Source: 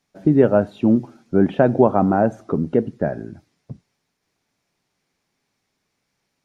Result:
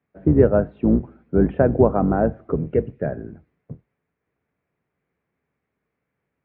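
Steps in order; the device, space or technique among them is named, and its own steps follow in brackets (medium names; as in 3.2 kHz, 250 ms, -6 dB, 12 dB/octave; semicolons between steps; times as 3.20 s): 2.56–3.06 s: fifteen-band graphic EQ 250 Hz -6 dB, 1 kHz -11 dB, 2.5 kHz +10 dB; sub-octave bass pedal (octave divider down 2 oct, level 0 dB; cabinet simulation 68–2200 Hz, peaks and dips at 150 Hz +3 dB, 460 Hz +5 dB, 850 Hz -4 dB); trim -3 dB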